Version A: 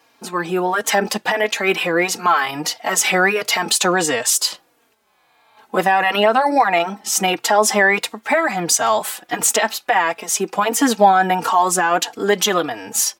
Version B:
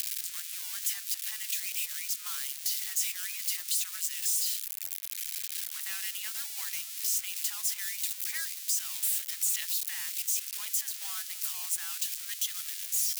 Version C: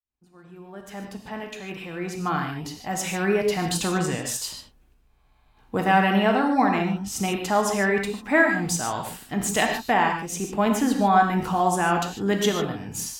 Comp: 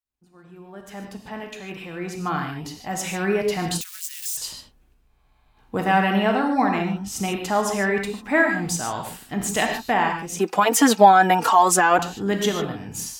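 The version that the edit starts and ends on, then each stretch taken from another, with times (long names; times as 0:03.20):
C
0:03.81–0:04.37: punch in from B
0:10.39–0:11.99: punch in from A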